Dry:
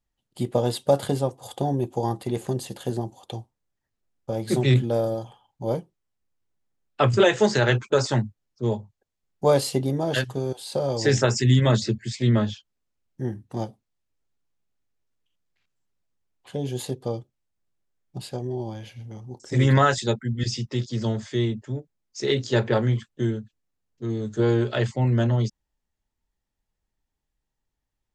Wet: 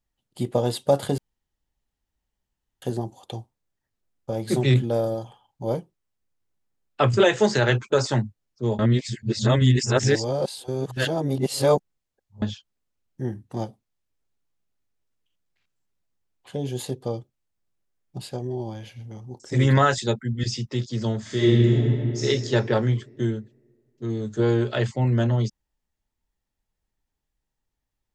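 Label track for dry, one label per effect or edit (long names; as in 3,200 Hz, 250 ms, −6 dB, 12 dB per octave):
1.180000	2.820000	fill with room tone
8.790000	12.420000	reverse
21.210000	22.230000	thrown reverb, RT60 2.6 s, DRR −6.5 dB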